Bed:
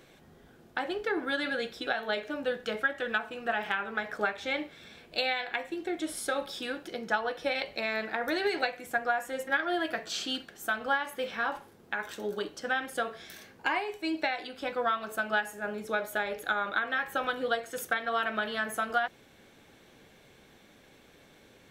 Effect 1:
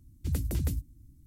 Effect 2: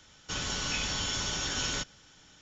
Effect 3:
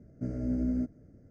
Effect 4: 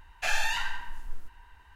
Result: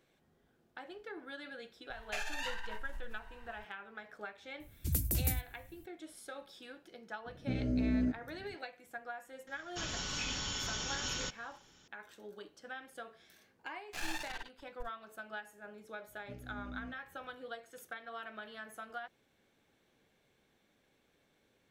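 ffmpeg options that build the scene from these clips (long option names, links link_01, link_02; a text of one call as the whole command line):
ffmpeg -i bed.wav -i cue0.wav -i cue1.wav -i cue2.wav -i cue3.wav -filter_complex "[4:a]asplit=2[link_01][link_02];[3:a]asplit=2[link_03][link_04];[0:a]volume=-15.5dB[link_05];[link_01]acompressor=threshold=-39dB:ratio=5:attack=17:release=35:knee=1:detection=peak[link_06];[1:a]aemphasis=mode=production:type=50fm[link_07];[link_03]alimiter=level_in=0.5dB:limit=-24dB:level=0:latency=1:release=71,volume=-0.5dB[link_08];[2:a]bandreject=frequency=650:width=12[link_09];[link_02]acrusher=bits=3:mix=0:aa=0.5[link_10];[link_04]equalizer=frequency=450:width_type=o:width=1.1:gain=-11.5[link_11];[link_06]atrim=end=1.75,asetpts=PTS-STARTPTS,volume=-1dB,afade=type=in:duration=0.004:curve=hsin,afade=type=out:start_time=1.746:duration=0.004:curve=hsin,adelay=1900[link_12];[link_07]atrim=end=1.26,asetpts=PTS-STARTPTS,volume=-4dB,afade=type=in:duration=0.004:curve=hsin,afade=type=out:start_time=1.256:duration=0.004:curve=hsin,adelay=4600[link_13];[link_08]atrim=end=1.3,asetpts=PTS-STARTPTS,afade=type=in:duration=0.004:curve=hsin,afade=type=out:start_time=1.296:duration=0.004:curve=hsin,adelay=7260[link_14];[link_09]atrim=end=2.41,asetpts=PTS-STARTPTS,volume=-6dB,afade=type=in:duration=0.004:curve=hsin,afade=type=out:start_time=2.406:duration=0.004:curve=hsin,adelay=9470[link_15];[link_10]atrim=end=1.75,asetpts=PTS-STARTPTS,volume=-14dB,afade=type=in:duration=0.004:curve=hsin,afade=type=out:start_time=1.746:duration=0.004:curve=hsin,adelay=13700[link_16];[link_11]atrim=end=1.3,asetpts=PTS-STARTPTS,volume=-13.5dB,afade=type=in:duration=0.004:curve=hsin,afade=type=out:start_time=1.296:duration=0.004:curve=hsin,adelay=16070[link_17];[link_05][link_12][link_13][link_14][link_15][link_16][link_17]amix=inputs=7:normalize=0" out.wav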